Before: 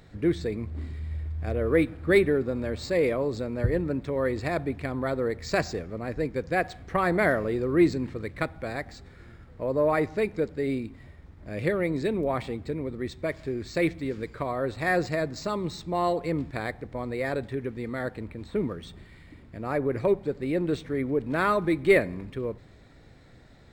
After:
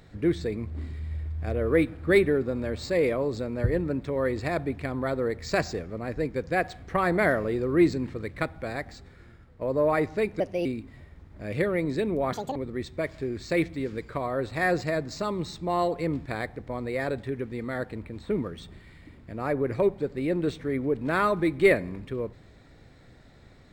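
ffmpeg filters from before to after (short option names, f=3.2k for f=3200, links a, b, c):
-filter_complex "[0:a]asplit=6[a][b][c][d][e][f];[a]atrim=end=9.61,asetpts=PTS-STARTPTS,afade=t=out:st=8.9:d=0.71:silence=0.473151[g];[b]atrim=start=9.61:end=10.404,asetpts=PTS-STARTPTS,afade=t=in:d=0.004:c=hsin:silence=0.473151[h];[c]atrim=start=10.4:end=10.72,asetpts=PTS-STARTPTS,asetrate=55566,aresample=44100[i];[d]atrim=start=10.716:end=12.394[j];[e]atrim=start=12.39:end=12.81,asetpts=PTS-STARTPTS,asetrate=78939,aresample=44100,atrim=end_sample=10347,asetpts=PTS-STARTPTS[k];[f]atrim=start=12.806[l];[g][h]concat=n=2:v=0:a=1[m];[m][i]acrossfade=d=0.004:c1=hsin:c2=hsin[n];[n][j]acrossfade=d=0.004:c1=hsin:c2=hsin[o];[o][k]acrossfade=d=0.004:c1=hsin:c2=hsin[p];[p][l]acrossfade=d=0.004:c1=hsin:c2=hsin"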